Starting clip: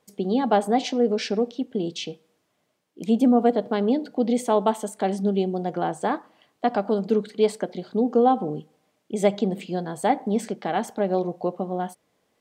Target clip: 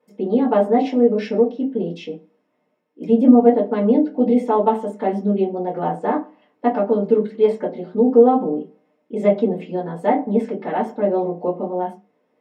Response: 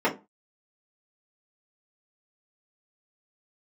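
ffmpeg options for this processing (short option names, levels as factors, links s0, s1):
-filter_complex "[1:a]atrim=start_sample=2205[s0];[0:a][s0]afir=irnorm=-1:irlink=0,volume=0.224"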